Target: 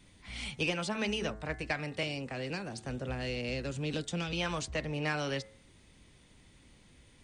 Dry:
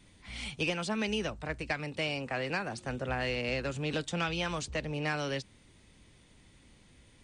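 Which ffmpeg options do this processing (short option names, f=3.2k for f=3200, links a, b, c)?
-filter_complex "[0:a]asettb=1/sr,asplit=3[a][b][c];[a]atrim=end=2.034[d];[b]atrim=start=2.03:end=4.33,asetpts=PTS-STARTPTS,afade=t=in:d=0.004:c=qsin,afade=t=out:st=2.296:d=0.004:c=qsin,acrossover=split=500|3000[e][f][g];[f]acompressor=threshold=-47dB:ratio=2.5[h];[e][h][g]amix=inputs=3:normalize=0[i];[c]atrim=start=4.326[j];[d][i]acrossfade=d=0.004:c1=hsin:c2=qsin[k];[k][j]acrossfade=d=0.004:c1=qsin:c2=hsin,bandreject=f=108.2:t=h:w=4,bandreject=f=216.4:t=h:w=4,bandreject=f=324.6:t=h:w=4,bandreject=f=432.8:t=h:w=4,bandreject=f=541:t=h:w=4,bandreject=f=649.2:t=h:w=4,bandreject=f=757.4:t=h:w=4,bandreject=f=865.6:t=h:w=4,bandreject=f=973.8:t=h:w=4,bandreject=f=1.082k:t=h:w=4,bandreject=f=1.1902k:t=h:w=4,bandreject=f=1.2984k:t=h:w=4,bandreject=f=1.4066k:t=h:w=4,bandreject=f=1.5148k:t=h:w=4,bandreject=f=1.623k:t=h:w=4,bandreject=f=1.7312k:t=h:w=4,bandreject=f=1.8394k:t=h:w=4,bandreject=f=1.9476k:t=h:w=4,bandreject=f=2.0558k:t=h:w=4,bandreject=f=2.164k:t=h:w=4"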